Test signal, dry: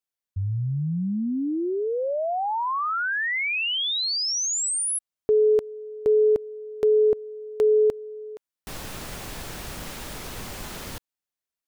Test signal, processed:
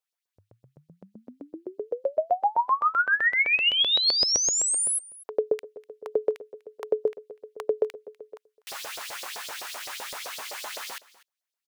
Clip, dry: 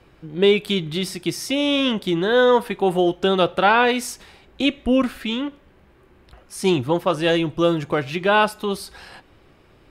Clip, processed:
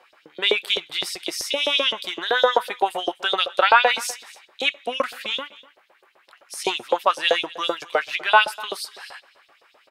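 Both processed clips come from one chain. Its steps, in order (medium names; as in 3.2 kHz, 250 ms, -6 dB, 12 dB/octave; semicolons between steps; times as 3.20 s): LFO high-pass saw up 7.8 Hz 520–5300 Hz; delay 247 ms -20.5 dB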